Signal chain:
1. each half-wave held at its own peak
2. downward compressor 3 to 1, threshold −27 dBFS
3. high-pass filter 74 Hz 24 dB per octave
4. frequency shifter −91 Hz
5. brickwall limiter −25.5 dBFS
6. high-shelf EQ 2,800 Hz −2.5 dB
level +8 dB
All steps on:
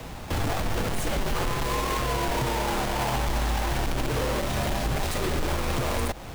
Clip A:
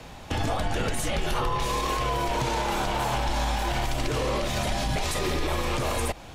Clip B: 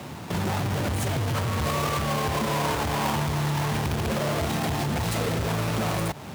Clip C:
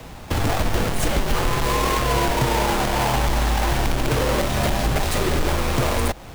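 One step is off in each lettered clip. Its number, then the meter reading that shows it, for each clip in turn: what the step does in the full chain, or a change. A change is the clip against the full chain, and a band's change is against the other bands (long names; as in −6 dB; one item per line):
1, distortion level −6 dB
4, 125 Hz band +3.5 dB
5, average gain reduction 5.5 dB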